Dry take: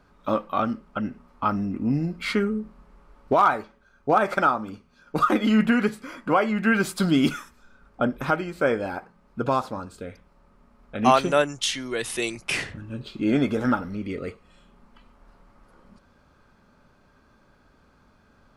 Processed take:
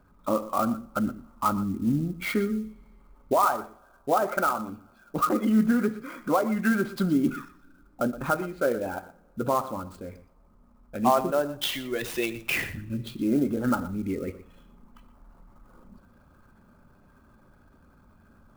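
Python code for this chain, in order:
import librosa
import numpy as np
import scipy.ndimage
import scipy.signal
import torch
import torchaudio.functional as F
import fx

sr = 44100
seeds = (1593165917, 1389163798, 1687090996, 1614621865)

p1 = fx.envelope_sharpen(x, sr, power=1.5)
p2 = fx.notch(p1, sr, hz=450.0, q=12.0)
p3 = fx.env_lowpass_down(p2, sr, base_hz=1300.0, full_db=-16.5)
p4 = fx.rider(p3, sr, range_db=10, speed_s=0.5)
p5 = p3 + (p4 * 10.0 ** (-2.5 / 20.0))
p6 = p5 + 10.0 ** (-15.5 / 20.0) * np.pad(p5, (int(120 * sr / 1000.0), 0))[:len(p5)]
p7 = fx.rev_double_slope(p6, sr, seeds[0], early_s=0.48, late_s=2.3, knee_db=-20, drr_db=14.5)
p8 = fx.clock_jitter(p7, sr, seeds[1], jitter_ms=0.023)
y = p8 * 10.0 ** (-7.0 / 20.0)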